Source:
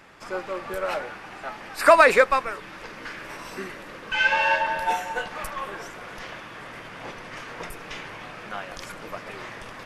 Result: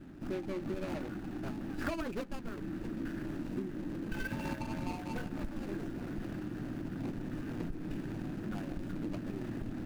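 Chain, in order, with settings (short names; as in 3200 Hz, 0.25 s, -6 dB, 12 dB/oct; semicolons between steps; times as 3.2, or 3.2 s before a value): median filter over 41 samples; resonant low shelf 380 Hz +7 dB, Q 3; compressor 16:1, threshold -33 dBFS, peak gain reduction 19 dB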